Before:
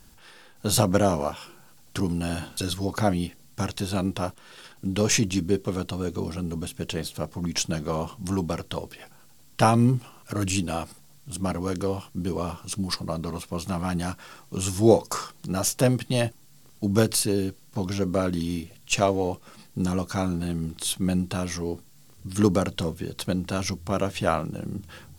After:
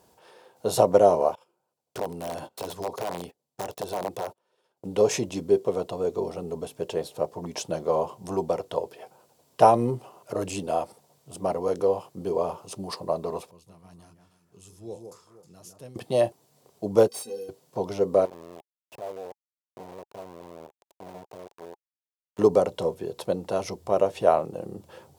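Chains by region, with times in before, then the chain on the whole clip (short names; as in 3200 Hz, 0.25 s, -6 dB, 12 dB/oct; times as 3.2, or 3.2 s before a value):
1.35–4.85 gate -40 dBFS, range -22 dB + compressor 2.5:1, threshold -28 dBFS + wrapped overs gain 23 dB
13.51–15.96 passive tone stack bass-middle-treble 6-0-2 + echo with dull and thin repeats by turns 0.157 s, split 2100 Hz, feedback 55%, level -5.5 dB
17.08–17.49 high shelf 2500 Hz +11.5 dB + metallic resonator 230 Hz, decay 0.24 s, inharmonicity 0.03 + hard clip -25.5 dBFS
18.25–22.39 LPF 2500 Hz + sample gate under -26 dBFS + tube stage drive 36 dB, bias 0.45
whole clip: HPF 100 Hz; band shelf 610 Hz +14.5 dB; notch 840 Hz, Q 12; gain -8 dB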